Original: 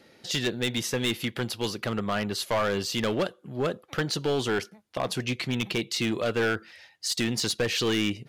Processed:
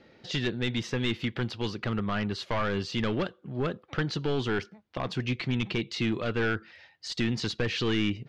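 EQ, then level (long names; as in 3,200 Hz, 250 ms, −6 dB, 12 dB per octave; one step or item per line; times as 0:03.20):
low-shelf EQ 78 Hz +8 dB
dynamic equaliser 600 Hz, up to −6 dB, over −40 dBFS, Q 1.4
high-frequency loss of the air 170 metres
0.0 dB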